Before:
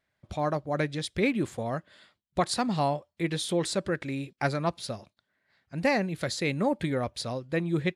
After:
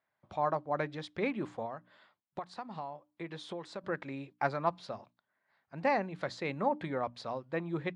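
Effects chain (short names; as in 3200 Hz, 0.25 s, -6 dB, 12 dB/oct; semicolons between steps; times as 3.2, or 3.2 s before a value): HPF 120 Hz; bell 960 Hz +11 dB 1.3 oct; notches 60/120/180/240/300 Hz; 1.65–3.84 compressor 8:1, threshold -29 dBFS, peak gain reduction 15.5 dB; air absorption 120 m; gain -8.5 dB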